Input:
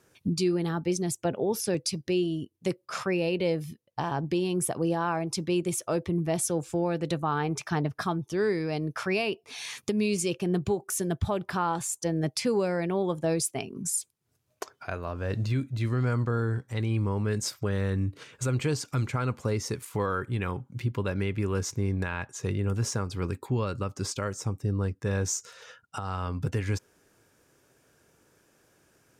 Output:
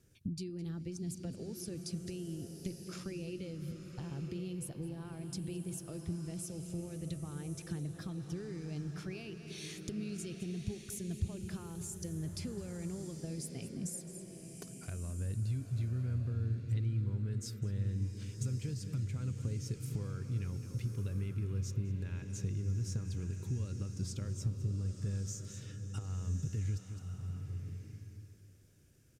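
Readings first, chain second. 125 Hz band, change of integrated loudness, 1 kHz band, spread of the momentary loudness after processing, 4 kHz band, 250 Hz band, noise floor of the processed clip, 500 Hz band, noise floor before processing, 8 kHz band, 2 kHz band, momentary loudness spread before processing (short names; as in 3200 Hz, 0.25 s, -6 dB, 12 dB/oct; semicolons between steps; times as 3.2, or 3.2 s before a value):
-5.5 dB, -10.0 dB, -25.5 dB, 8 LU, -13.5 dB, -11.0 dB, -52 dBFS, -18.5 dB, -69 dBFS, -12.5 dB, -19.0 dB, 6 LU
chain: on a send: echo 0.211 s -16.5 dB; on the sum: compressor, threshold -35 dBFS, peak gain reduction 12.5 dB; passive tone stack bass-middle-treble 10-0-1; bloom reverb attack 1.19 s, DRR 6 dB; gain +14.5 dB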